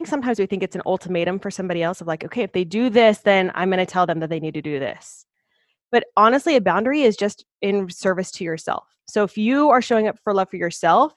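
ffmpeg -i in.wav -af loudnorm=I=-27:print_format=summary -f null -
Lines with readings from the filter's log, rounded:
Input Integrated:    -20.2 LUFS
Input True Peak:      -2.2 dBTP
Input LRA:             1.0 LU
Input Threshold:     -30.4 LUFS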